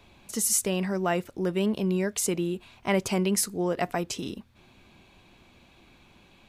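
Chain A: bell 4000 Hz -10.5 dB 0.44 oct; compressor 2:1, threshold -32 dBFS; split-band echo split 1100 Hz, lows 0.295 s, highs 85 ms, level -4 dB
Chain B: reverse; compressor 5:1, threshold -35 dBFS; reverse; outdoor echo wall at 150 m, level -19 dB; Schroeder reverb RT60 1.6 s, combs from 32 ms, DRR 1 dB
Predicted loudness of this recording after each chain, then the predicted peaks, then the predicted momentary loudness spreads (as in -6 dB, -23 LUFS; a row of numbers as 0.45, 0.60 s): -31.5, -35.5 LUFS; -16.5, -21.0 dBFS; 13, 20 LU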